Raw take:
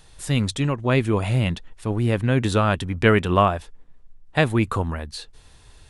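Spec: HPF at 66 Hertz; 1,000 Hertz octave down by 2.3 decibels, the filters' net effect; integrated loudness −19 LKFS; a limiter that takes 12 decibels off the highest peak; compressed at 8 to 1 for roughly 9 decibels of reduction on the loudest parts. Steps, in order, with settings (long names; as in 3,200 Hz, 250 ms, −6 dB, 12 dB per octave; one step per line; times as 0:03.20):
high-pass filter 66 Hz
parametric band 1,000 Hz −3 dB
downward compressor 8 to 1, threshold −21 dBFS
level +12 dB
brickwall limiter −8.5 dBFS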